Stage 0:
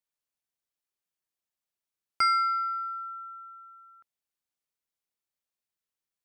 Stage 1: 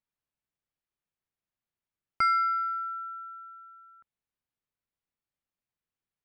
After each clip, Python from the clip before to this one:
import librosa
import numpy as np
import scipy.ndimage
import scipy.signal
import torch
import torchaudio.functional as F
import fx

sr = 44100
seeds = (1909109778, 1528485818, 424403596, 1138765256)

y = fx.bass_treble(x, sr, bass_db=8, treble_db=-13)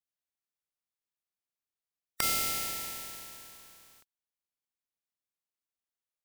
y = fx.spec_flatten(x, sr, power=0.17)
y = F.gain(torch.from_numpy(y), -3.5).numpy()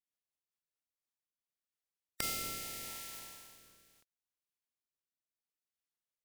y = fx.rotary_switch(x, sr, hz=5.0, then_hz=0.75, switch_at_s=0.53)
y = F.gain(torch.from_numpy(y), -2.5).numpy()